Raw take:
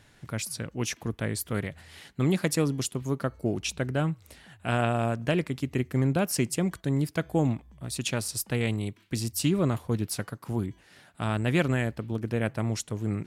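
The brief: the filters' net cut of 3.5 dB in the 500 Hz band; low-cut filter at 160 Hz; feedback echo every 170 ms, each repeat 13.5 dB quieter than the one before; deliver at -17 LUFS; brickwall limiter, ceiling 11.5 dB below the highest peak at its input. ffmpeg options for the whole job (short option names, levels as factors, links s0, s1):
-af "highpass=160,equalizer=f=500:t=o:g=-4.5,alimiter=limit=0.0794:level=0:latency=1,aecho=1:1:170|340:0.211|0.0444,volume=7.5"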